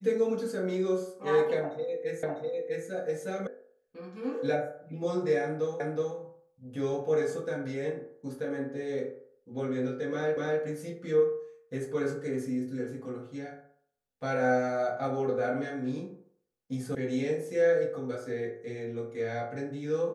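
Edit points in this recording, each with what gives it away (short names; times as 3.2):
2.23 repeat of the last 0.65 s
3.47 sound cut off
5.8 repeat of the last 0.37 s
10.37 repeat of the last 0.25 s
16.95 sound cut off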